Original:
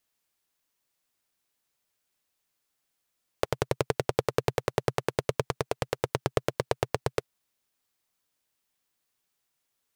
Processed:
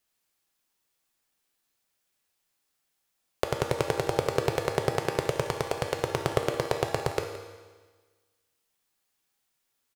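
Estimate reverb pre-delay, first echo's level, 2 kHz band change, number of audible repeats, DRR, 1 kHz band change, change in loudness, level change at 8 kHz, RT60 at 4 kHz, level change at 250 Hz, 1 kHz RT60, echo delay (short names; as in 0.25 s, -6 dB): 4 ms, -14.5 dB, +2.0 dB, 1, 2.5 dB, +2.0 dB, +1.5 dB, +2.0 dB, 1.4 s, +1.5 dB, 1.4 s, 0.17 s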